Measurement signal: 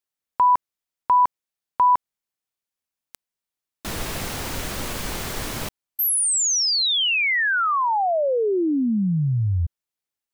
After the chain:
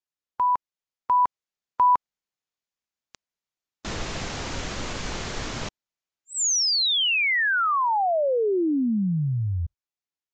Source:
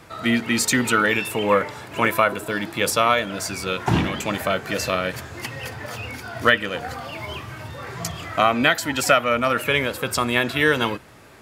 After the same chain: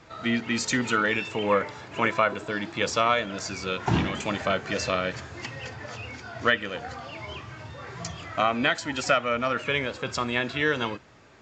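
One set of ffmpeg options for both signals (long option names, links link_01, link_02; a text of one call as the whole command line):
ffmpeg -i in.wav -af "dynaudnorm=framelen=140:gausssize=17:maxgain=4dB,volume=-5.5dB" -ar 16000 -c:a aac -b:a 48k out.aac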